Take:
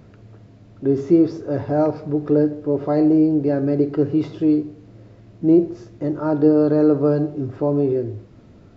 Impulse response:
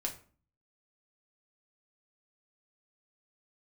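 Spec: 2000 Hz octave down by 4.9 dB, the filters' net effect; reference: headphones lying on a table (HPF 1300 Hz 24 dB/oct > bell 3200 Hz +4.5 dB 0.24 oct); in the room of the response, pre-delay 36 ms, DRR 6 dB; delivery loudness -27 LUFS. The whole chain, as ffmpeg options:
-filter_complex "[0:a]equalizer=f=2k:t=o:g=-6,asplit=2[a][b];[1:a]atrim=start_sample=2205,adelay=36[c];[b][c]afir=irnorm=-1:irlink=0,volume=-7dB[d];[a][d]amix=inputs=2:normalize=0,highpass=f=1.3k:w=0.5412,highpass=f=1.3k:w=1.3066,equalizer=f=3.2k:t=o:w=0.24:g=4.5,volume=19.5dB"

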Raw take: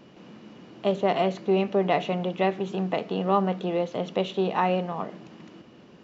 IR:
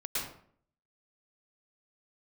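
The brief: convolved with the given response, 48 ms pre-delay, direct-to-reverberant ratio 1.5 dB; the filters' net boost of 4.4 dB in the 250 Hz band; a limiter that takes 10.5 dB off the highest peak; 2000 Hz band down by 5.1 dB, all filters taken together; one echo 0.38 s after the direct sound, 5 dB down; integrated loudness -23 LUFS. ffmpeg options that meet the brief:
-filter_complex "[0:a]equalizer=f=250:t=o:g=7.5,equalizer=f=2k:t=o:g=-6.5,alimiter=limit=-19dB:level=0:latency=1,aecho=1:1:380:0.562,asplit=2[a][b];[1:a]atrim=start_sample=2205,adelay=48[c];[b][c]afir=irnorm=-1:irlink=0,volume=-6.5dB[d];[a][d]amix=inputs=2:normalize=0,volume=2.5dB"

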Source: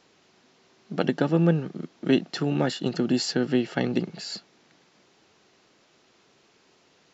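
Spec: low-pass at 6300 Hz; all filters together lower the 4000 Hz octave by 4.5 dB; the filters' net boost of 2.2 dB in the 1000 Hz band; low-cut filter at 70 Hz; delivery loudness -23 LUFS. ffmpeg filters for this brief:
-af "highpass=70,lowpass=6.3k,equalizer=f=1k:t=o:g=3.5,equalizer=f=4k:t=o:g=-5,volume=3dB"

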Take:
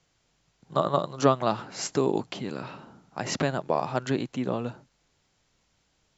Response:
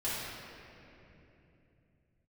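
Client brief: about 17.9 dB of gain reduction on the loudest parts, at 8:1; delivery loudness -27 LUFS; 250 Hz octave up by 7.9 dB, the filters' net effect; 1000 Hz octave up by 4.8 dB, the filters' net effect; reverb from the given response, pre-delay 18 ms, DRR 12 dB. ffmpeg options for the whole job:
-filter_complex "[0:a]equalizer=f=250:t=o:g=9,equalizer=f=1k:t=o:g=5.5,acompressor=threshold=-28dB:ratio=8,asplit=2[a][b];[1:a]atrim=start_sample=2205,adelay=18[c];[b][c]afir=irnorm=-1:irlink=0,volume=-18.5dB[d];[a][d]amix=inputs=2:normalize=0,volume=7dB"

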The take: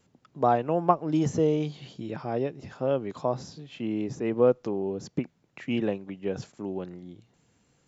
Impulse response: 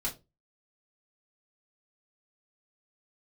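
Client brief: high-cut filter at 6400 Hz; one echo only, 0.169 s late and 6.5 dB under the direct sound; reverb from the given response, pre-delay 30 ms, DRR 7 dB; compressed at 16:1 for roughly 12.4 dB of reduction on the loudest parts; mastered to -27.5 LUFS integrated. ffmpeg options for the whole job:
-filter_complex "[0:a]lowpass=6.4k,acompressor=threshold=-27dB:ratio=16,aecho=1:1:169:0.473,asplit=2[a][b];[1:a]atrim=start_sample=2205,adelay=30[c];[b][c]afir=irnorm=-1:irlink=0,volume=-10.5dB[d];[a][d]amix=inputs=2:normalize=0,volume=5.5dB"

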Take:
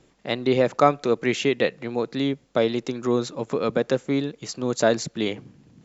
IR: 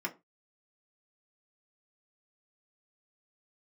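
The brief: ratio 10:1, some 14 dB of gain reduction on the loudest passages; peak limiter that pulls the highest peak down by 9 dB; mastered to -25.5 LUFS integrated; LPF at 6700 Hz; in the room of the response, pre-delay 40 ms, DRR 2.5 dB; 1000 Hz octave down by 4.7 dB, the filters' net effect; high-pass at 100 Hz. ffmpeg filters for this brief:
-filter_complex "[0:a]highpass=100,lowpass=6.7k,equalizer=f=1k:t=o:g=-7.5,acompressor=threshold=-30dB:ratio=10,alimiter=level_in=2dB:limit=-24dB:level=0:latency=1,volume=-2dB,asplit=2[a][b];[1:a]atrim=start_sample=2205,adelay=40[c];[b][c]afir=irnorm=-1:irlink=0,volume=-6.5dB[d];[a][d]amix=inputs=2:normalize=0,volume=10.5dB"

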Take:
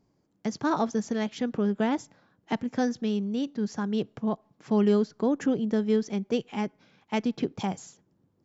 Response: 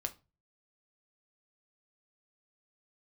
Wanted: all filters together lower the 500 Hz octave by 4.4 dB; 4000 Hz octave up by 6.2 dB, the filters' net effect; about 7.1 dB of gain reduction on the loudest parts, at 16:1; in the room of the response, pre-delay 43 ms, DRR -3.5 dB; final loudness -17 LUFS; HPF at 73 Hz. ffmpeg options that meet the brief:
-filter_complex "[0:a]highpass=73,equalizer=f=500:t=o:g=-5.5,equalizer=f=4k:t=o:g=8.5,acompressor=threshold=-28dB:ratio=16,asplit=2[a][b];[1:a]atrim=start_sample=2205,adelay=43[c];[b][c]afir=irnorm=-1:irlink=0,volume=3.5dB[d];[a][d]amix=inputs=2:normalize=0,volume=12dB"

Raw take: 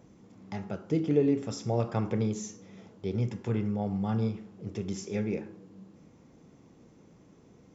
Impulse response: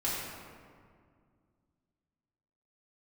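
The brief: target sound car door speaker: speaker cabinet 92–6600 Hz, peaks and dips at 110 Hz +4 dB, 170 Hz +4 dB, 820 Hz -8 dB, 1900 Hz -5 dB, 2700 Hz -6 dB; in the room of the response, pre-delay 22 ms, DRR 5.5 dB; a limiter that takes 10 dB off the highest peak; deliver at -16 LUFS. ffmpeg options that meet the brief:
-filter_complex "[0:a]alimiter=limit=-23dB:level=0:latency=1,asplit=2[a][b];[1:a]atrim=start_sample=2205,adelay=22[c];[b][c]afir=irnorm=-1:irlink=0,volume=-12.5dB[d];[a][d]amix=inputs=2:normalize=0,highpass=92,equalizer=f=110:t=q:w=4:g=4,equalizer=f=170:t=q:w=4:g=4,equalizer=f=820:t=q:w=4:g=-8,equalizer=f=1.9k:t=q:w=4:g=-5,equalizer=f=2.7k:t=q:w=4:g=-6,lowpass=f=6.6k:w=0.5412,lowpass=f=6.6k:w=1.3066,volume=16dB"

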